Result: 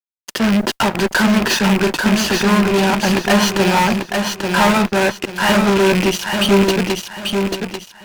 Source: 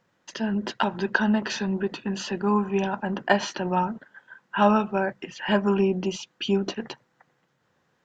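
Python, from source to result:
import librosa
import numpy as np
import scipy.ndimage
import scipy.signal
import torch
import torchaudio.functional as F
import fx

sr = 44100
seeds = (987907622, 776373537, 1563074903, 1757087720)

p1 = fx.rattle_buzz(x, sr, strikes_db=-34.0, level_db=-22.0)
p2 = fx.fuzz(p1, sr, gain_db=31.0, gate_db=-37.0)
p3 = p2 + fx.echo_feedback(p2, sr, ms=840, feedback_pct=30, wet_db=-4.5, dry=0)
p4 = fx.mod_noise(p3, sr, seeds[0], snr_db=35)
y = p4 * librosa.db_to_amplitude(1.5)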